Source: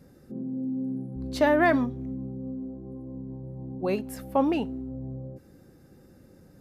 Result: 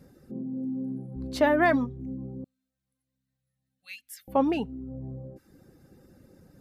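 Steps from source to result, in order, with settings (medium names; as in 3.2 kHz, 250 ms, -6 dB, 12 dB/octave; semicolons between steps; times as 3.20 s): reverb removal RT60 0.56 s; 2.44–4.28 s: inverse Chebyshev high-pass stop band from 990 Hz, stop band 40 dB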